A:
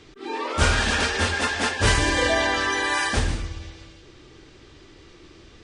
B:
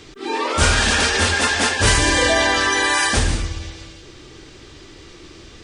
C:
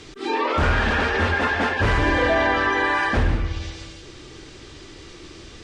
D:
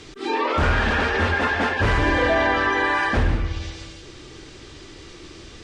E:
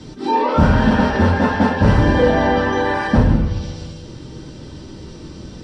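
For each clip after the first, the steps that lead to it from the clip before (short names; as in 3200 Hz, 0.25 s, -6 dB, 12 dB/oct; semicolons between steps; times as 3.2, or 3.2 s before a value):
high shelf 5800 Hz +8.5 dB; in parallel at +0.5 dB: limiter -16.5 dBFS, peak gain reduction 11 dB
wavefolder -11 dBFS; treble ducked by the level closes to 1900 Hz, closed at -16.5 dBFS
nothing audible
reverb RT60 0.20 s, pre-delay 3 ms, DRR -3 dB; gain -9 dB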